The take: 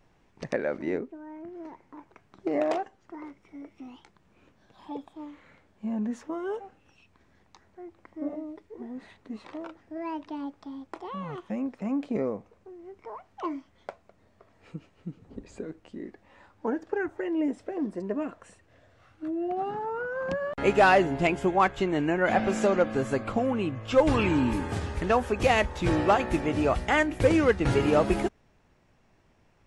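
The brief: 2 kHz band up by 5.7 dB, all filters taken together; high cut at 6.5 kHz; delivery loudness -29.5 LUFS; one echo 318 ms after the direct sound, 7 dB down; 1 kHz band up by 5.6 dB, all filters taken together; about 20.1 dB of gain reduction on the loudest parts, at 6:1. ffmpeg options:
-af "lowpass=6500,equalizer=f=1000:t=o:g=6.5,equalizer=f=2000:t=o:g=5,acompressor=threshold=0.02:ratio=6,aecho=1:1:318:0.447,volume=2.66"

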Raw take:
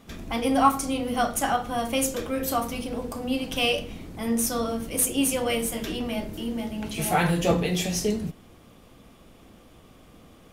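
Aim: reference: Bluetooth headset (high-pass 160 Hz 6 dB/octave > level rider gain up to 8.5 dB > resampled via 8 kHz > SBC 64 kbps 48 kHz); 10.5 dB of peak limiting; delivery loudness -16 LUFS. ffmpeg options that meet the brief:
-af "alimiter=limit=0.15:level=0:latency=1,highpass=f=160:p=1,dynaudnorm=m=2.66,aresample=8000,aresample=44100,volume=4.73" -ar 48000 -c:a sbc -b:a 64k

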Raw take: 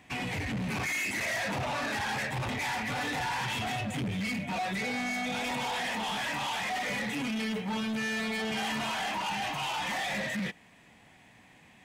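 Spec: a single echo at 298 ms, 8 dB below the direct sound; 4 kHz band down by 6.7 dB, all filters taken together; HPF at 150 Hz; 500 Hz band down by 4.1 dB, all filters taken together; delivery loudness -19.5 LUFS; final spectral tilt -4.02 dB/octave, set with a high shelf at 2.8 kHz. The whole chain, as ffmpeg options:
-af "highpass=150,equalizer=f=500:t=o:g=-5,highshelf=f=2800:g=-4,equalizer=f=4000:t=o:g=-6,aecho=1:1:298:0.398,volume=5.62"

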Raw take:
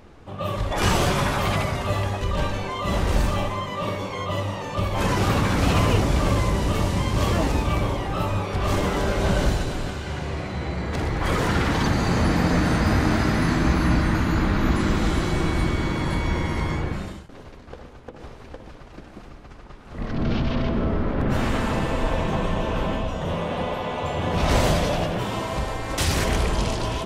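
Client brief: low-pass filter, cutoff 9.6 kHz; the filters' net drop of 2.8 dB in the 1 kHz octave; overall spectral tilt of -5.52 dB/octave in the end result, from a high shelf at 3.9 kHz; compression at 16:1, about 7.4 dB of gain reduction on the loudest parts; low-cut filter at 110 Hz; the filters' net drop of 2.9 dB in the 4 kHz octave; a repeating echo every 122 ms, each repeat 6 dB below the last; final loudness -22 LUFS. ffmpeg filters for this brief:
-af "highpass=110,lowpass=9600,equalizer=f=1000:t=o:g=-3.5,highshelf=f=3900:g=4,equalizer=f=4000:t=o:g=-6,acompressor=threshold=0.0562:ratio=16,aecho=1:1:122|244|366|488|610|732:0.501|0.251|0.125|0.0626|0.0313|0.0157,volume=2.24"

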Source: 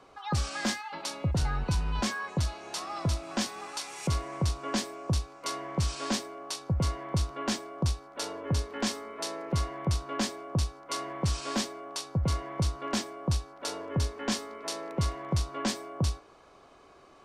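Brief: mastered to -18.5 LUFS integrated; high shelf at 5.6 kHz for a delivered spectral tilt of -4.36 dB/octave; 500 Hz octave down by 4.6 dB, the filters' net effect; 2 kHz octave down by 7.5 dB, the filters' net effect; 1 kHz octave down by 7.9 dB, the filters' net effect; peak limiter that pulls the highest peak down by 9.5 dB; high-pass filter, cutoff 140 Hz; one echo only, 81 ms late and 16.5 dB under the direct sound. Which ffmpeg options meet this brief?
-af "highpass=140,equalizer=f=500:t=o:g=-3.5,equalizer=f=1000:t=o:g=-7,equalizer=f=2000:t=o:g=-6.5,highshelf=f=5600:g=-5.5,alimiter=level_in=2:limit=0.0631:level=0:latency=1,volume=0.501,aecho=1:1:81:0.15,volume=14.1"

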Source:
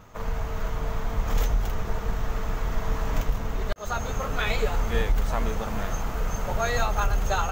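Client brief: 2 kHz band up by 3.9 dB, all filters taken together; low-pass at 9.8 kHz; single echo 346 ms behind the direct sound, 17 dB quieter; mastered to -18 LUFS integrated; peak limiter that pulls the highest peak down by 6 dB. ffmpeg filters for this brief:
-af "lowpass=9800,equalizer=f=2000:t=o:g=5,alimiter=limit=0.126:level=0:latency=1,aecho=1:1:346:0.141,volume=4.22"

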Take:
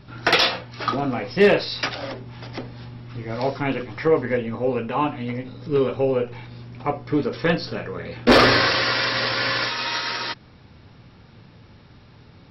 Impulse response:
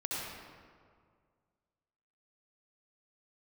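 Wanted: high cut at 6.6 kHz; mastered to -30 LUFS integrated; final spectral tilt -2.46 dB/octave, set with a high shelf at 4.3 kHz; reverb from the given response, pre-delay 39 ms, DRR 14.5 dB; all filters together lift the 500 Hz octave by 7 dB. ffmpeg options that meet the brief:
-filter_complex "[0:a]lowpass=6600,equalizer=f=500:t=o:g=8,highshelf=f=4300:g=7,asplit=2[s0][s1];[1:a]atrim=start_sample=2205,adelay=39[s2];[s1][s2]afir=irnorm=-1:irlink=0,volume=0.119[s3];[s0][s3]amix=inputs=2:normalize=0,volume=0.224"

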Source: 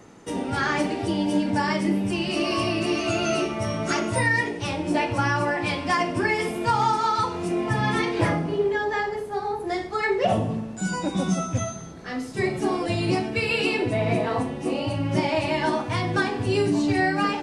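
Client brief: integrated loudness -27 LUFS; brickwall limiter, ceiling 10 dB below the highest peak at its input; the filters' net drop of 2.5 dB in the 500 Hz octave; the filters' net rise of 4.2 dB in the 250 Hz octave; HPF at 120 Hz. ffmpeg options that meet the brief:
-af "highpass=120,equalizer=f=250:t=o:g=8.5,equalizer=f=500:t=o:g=-7.5,volume=0.944,alimiter=limit=0.126:level=0:latency=1"

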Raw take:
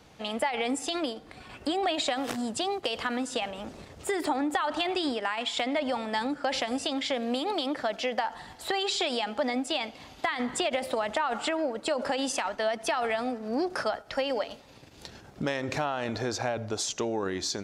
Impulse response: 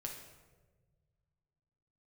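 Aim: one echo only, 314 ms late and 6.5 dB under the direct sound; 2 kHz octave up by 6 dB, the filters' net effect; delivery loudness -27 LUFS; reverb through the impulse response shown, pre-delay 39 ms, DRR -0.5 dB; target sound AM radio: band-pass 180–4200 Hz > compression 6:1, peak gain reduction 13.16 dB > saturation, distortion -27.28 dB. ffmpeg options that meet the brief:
-filter_complex "[0:a]equalizer=f=2000:t=o:g=7.5,aecho=1:1:314:0.473,asplit=2[s0][s1];[1:a]atrim=start_sample=2205,adelay=39[s2];[s1][s2]afir=irnorm=-1:irlink=0,volume=1.33[s3];[s0][s3]amix=inputs=2:normalize=0,highpass=180,lowpass=4200,acompressor=threshold=0.0251:ratio=6,asoftclip=threshold=0.0841,volume=2.51"

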